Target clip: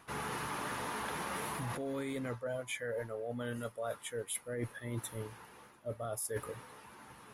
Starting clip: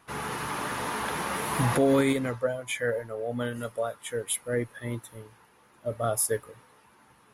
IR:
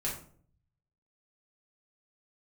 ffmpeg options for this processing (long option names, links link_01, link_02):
-af "alimiter=limit=-20dB:level=0:latency=1:release=14,areverse,acompressor=threshold=-40dB:ratio=12,areverse,volume=4.5dB"